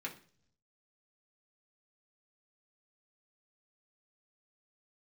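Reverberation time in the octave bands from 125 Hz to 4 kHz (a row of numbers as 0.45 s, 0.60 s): 1.1 s, 0.80 s, 0.60 s, 0.40 s, 0.45 s, 0.55 s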